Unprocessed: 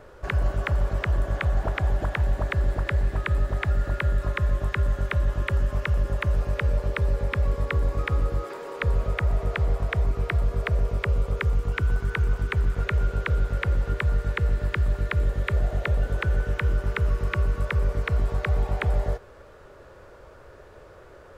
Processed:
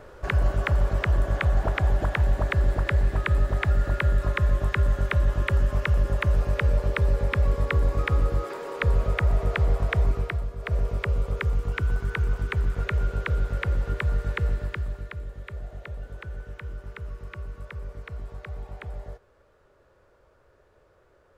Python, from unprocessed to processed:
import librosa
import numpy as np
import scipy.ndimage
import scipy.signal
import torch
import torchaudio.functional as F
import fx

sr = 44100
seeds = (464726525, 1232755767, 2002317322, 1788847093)

y = fx.gain(x, sr, db=fx.line((10.12, 1.5), (10.57, -10.0), (10.73, -1.5), (14.48, -1.5), (15.24, -13.0)))